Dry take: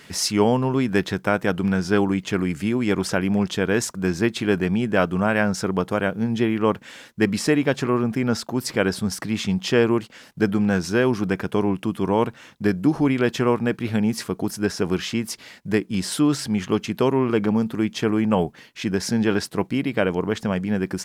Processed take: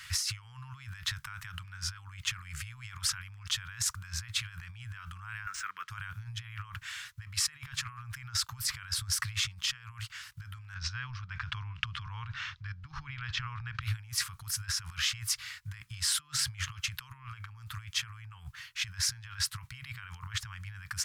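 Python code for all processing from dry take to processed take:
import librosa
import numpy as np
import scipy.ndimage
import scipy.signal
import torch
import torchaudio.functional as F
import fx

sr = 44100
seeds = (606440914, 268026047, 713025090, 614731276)

y = fx.chain(x, sr, fx.highpass(hz=310.0, slope=24),
    fx.fixed_phaser(hz=1900.0, stages=4),
    fx.resample_linear(factor=3), at=(5.46, 5.9))
y = fx.chain(y, sr, fx.lowpass(hz=5100.0, slope=24),
    fx.low_shelf(hz=460.0, db=3.5),
    fx.over_compress(threshold_db=-26.0, ratio=-1.0), at=(10.74, 13.82))
y = fx.over_compress(y, sr, threshold_db=-29.0, ratio=-1.0)
y = scipy.signal.sosfilt(scipy.signal.ellip(3, 1.0, 40, [110.0, 1200.0], 'bandstop', fs=sr, output='sos'), y)
y = fx.peak_eq(y, sr, hz=66.0, db=4.0, octaves=1.1)
y = y * librosa.db_to_amplitude(-4.5)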